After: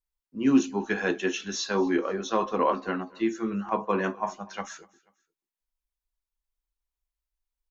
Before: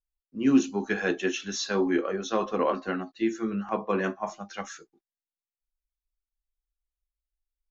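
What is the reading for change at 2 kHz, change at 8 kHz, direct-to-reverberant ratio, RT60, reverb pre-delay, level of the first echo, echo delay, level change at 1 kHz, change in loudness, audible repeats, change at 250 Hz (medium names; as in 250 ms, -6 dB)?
0.0 dB, no reading, no reverb, no reverb, no reverb, -24.0 dB, 243 ms, +3.0 dB, +0.5 dB, 2, 0.0 dB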